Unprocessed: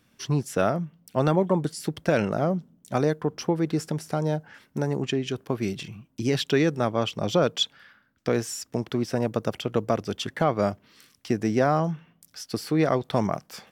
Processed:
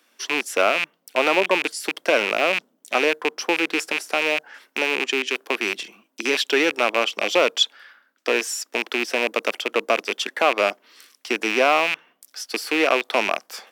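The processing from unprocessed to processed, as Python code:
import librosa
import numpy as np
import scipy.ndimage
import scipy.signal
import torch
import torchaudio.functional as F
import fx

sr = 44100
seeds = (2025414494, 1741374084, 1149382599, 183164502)

y = fx.rattle_buzz(x, sr, strikes_db=-30.0, level_db=-16.0)
y = scipy.signal.sosfilt(scipy.signal.bessel(8, 470.0, 'highpass', norm='mag', fs=sr, output='sos'), y)
y = y * librosa.db_to_amplitude(6.0)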